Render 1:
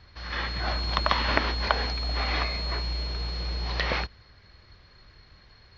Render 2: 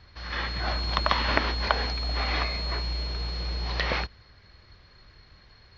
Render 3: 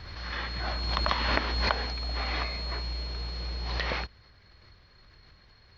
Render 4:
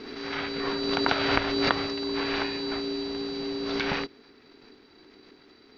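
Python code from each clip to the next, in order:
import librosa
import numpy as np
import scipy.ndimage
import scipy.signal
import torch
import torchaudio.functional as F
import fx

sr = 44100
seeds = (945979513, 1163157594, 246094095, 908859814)

y1 = x
y2 = fx.pre_swell(y1, sr, db_per_s=30.0)
y2 = F.gain(torch.from_numpy(y2), -4.0).numpy()
y3 = y2 * np.sin(2.0 * np.pi * 340.0 * np.arange(len(y2)) / sr)
y3 = F.gain(torch.from_numpy(y3), 5.0).numpy()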